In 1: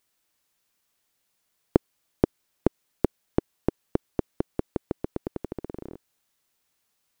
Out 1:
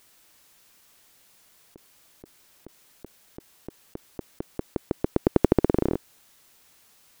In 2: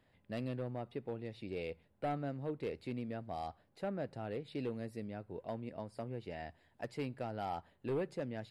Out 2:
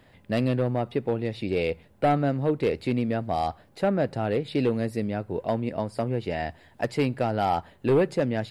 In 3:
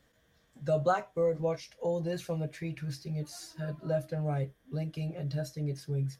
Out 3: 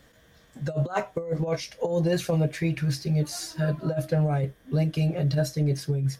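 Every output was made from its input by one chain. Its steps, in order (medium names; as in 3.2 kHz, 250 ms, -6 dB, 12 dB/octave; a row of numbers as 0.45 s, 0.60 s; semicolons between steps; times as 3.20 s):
compressor with a negative ratio -32 dBFS, ratio -0.5; normalise loudness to -27 LUFS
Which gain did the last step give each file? +9.0 dB, +15.0 dB, +9.0 dB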